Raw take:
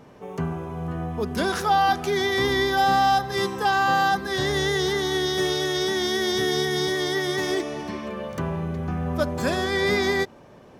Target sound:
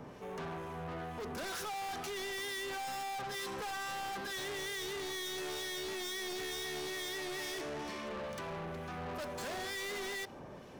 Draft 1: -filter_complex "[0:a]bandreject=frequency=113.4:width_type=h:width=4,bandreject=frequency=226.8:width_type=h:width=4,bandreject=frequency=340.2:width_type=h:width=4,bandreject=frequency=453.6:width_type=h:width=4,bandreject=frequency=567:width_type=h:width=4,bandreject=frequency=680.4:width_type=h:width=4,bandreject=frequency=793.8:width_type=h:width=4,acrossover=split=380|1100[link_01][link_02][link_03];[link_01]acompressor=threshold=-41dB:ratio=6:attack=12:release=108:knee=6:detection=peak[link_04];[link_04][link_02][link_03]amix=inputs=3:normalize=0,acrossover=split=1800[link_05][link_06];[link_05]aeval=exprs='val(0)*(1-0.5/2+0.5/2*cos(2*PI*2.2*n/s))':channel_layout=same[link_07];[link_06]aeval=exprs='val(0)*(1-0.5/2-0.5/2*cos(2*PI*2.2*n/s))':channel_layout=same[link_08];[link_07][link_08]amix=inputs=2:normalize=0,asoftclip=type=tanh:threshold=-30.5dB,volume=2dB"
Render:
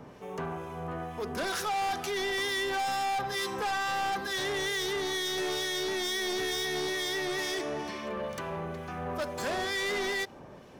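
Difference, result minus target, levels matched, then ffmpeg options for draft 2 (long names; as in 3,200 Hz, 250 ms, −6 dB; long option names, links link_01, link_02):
soft clipping: distortion −4 dB
-filter_complex "[0:a]bandreject=frequency=113.4:width_type=h:width=4,bandreject=frequency=226.8:width_type=h:width=4,bandreject=frequency=340.2:width_type=h:width=4,bandreject=frequency=453.6:width_type=h:width=4,bandreject=frequency=567:width_type=h:width=4,bandreject=frequency=680.4:width_type=h:width=4,bandreject=frequency=793.8:width_type=h:width=4,acrossover=split=380|1100[link_01][link_02][link_03];[link_01]acompressor=threshold=-41dB:ratio=6:attack=12:release=108:knee=6:detection=peak[link_04];[link_04][link_02][link_03]amix=inputs=3:normalize=0,acrossover=split=1800[link_05][link_06];[link_05]aeval=exprs='val(0)*(1-0.5/2+0.5/2*cos(2*PI*2.2*n/s))':channel_layout=same[link_07];[link_06]aeval=exprs='val(0)*(1-0.5/2-0.5/2*cos(2*PI*2.2*n/s))':channel_layout=same[link_08];[link_07][link_08]amix=inputs=2:normalize=0,asoftclip=type=tanh:threshold=-41dB,volume=2dB"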